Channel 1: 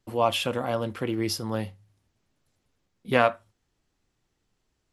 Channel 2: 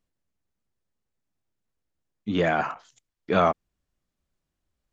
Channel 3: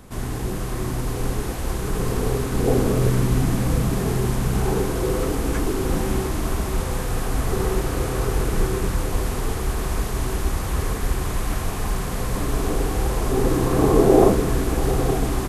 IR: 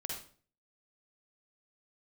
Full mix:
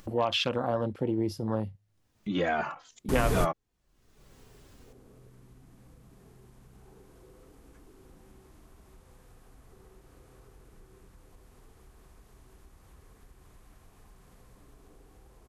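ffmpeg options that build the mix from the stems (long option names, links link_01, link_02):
-filter_complex "[0:a]afwtdn=0.0224,adynamicequalizer=threshold=0.00708:dfrequency=4500:dqfactor=0.95:tfrequency=4500:tqfactor=0.95:attack=5:release=100:ratio=0.375:range=3:mode=boostabove:tftype=bell,volume=1dB,asplit=2[link_01][link_02];[1:a]asplit=2[link_03][link_04];[link_04]adelay=3,afreqshift=-2.6[link_05];[link_03][link_05]amix=inputs=2:normalize=1,volume=-0.5dB[link_06];[2:a]dynaudnorm=framelen=100:gausssize=21:maxgain=7dB,adelay=2200,volume=-6dB[link_07];[link_02]apad=whole_len=779783[link_08];[link_07][link_08]sidechaingate=range=-60dB:threshold=-38dB:ratio=16:detection=peak[link_09];[link_01][link_06]amix=inputs=2:normalize=0,acompressor=threshold=-23dB:ratio=6,volume=0dB[link_10];[link_09][link_10]amix=inputs=2:normalize=0,acompressor=mode=upward:threshold=-32dB:ratio=2.5"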